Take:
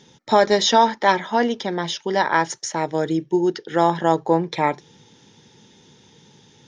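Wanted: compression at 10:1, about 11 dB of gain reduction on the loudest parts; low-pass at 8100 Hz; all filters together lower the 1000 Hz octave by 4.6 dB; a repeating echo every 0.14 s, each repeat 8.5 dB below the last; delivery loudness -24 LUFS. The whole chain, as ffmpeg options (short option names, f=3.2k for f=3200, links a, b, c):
-af "lowpass=8.1k,equalizer=f=1k:t=o:g=-5.5,acompressor=threshold=-24dB:ratio=10,aecho=1:1:140|280|420|560:0.376|0.143|0.0543|0.0206,volume=5dB"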